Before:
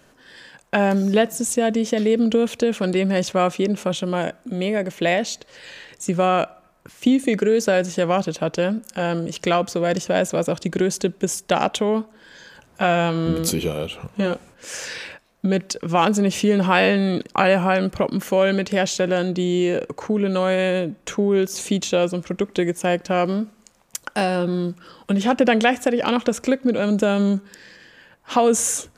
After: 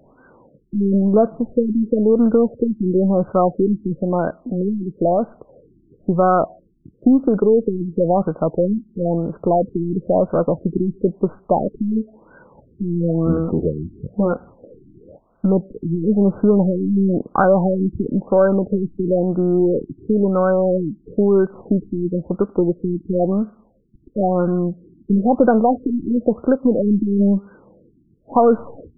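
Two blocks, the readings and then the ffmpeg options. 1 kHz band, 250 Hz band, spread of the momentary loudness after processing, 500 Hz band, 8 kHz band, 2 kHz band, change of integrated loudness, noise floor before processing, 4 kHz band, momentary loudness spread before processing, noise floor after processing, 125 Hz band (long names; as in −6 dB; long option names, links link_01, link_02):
0.0 dB, +4.0 dB, 8 LU, +2.0 dB, below −40 dB, −11.5 dB, +2.0 dB, −55 dBFS, below −40 dB, 9 LU, −56 dBFS, +4.0 dB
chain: -af "acontrast=31,aeval=exprs='0.841*(cos(1*acos(clip(val(0)/0.841,-1,1)))-cos(1*PI/2))+0.0211*(cos(8*acos(clip(val(0)/0.841,-1,1)))-cos(8*PI/2))':channel_layout=same,afftfilt=real='re*lt(b*sr/1024,370*pow(1600/370,0.5+0.5*sin(2*PI*0.99*pts/sr)))':imag='im*lt(b*sr/1024,370*pow(1600/370,0.5+0.5*sin(2*PI*0.99*pts/sr)))':win_size=1024:overlap=0.75,volume=-1dB"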